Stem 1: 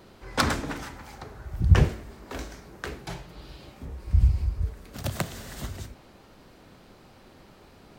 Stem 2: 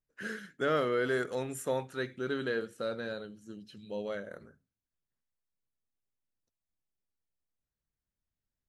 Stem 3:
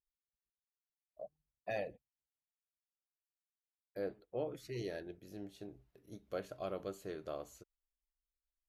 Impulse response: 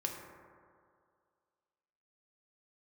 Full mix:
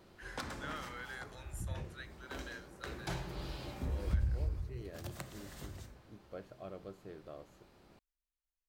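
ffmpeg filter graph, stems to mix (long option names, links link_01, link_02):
-filter_complex "[0:a]acompressor=threshold=-30dB:ratio=6,volume=-3.5dB,afade=type=in:start_time=2.86:duration=0.45:silence=0.316228,afade=type=out:start_time=4.38:duration=0.38:silence=0.251189,asplit=2[link_01][link_02];[link_02]volume=-3dB[link_03];[1:a]highpass=1300,volume=-8.5dB,asplit=2[link_04][link_05];[2:a]bass=frequency=250:gain=6,treble=frequency=4000:gain=-9,volume=-7dB[link_06];[link_05]apad=whole_len=382827[link_07];[link_06][link_07]sidechaincompress=threshold=-57dB:ratio=8:attack=16:release=1090[link_08];[3:a]atrim=start_sample=2205[link_09];[link_03][link_09]afir=irnorm=-1:irlink=0[link_10];[link_01][link_04][link_08][link_10]amix=inputs=4:normalize=0"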